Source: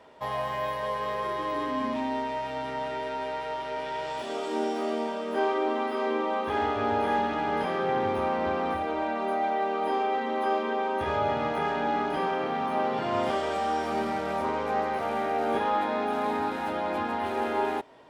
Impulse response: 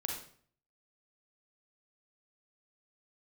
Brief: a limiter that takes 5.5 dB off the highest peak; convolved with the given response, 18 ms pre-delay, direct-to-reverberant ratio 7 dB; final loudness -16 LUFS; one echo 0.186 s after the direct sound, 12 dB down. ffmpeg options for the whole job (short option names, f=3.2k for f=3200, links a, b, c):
-filter_complex "[0:a]alimiter=limit=-20dB:level=0:latency=1,aecho=1:1:186:0.251,asplit=2[a][b];[1:a]atrim=start_sample=2205,adelay=18[c];[b][c]afir=irnorm=-1:irlink=0,volume=-8.5dB[d];[a][d]amix=inputs=2:normalize=0,volume=12.5dB"